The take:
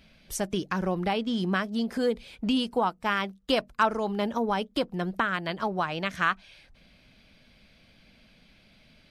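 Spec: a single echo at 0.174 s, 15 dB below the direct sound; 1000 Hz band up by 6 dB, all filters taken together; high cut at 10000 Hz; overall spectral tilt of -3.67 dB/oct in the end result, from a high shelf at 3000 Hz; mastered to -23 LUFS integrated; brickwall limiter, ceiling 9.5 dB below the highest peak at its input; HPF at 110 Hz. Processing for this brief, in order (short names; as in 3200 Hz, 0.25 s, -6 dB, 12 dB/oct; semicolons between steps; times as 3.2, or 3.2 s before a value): HPF 110 Hz; LPF 10000 Hz; bell 1000 Hz +8 dB; high shelf 3000 Hz -4.5 dB; limiter -15 dBFS; echo 0.174 s -15 dB; gain +5 dB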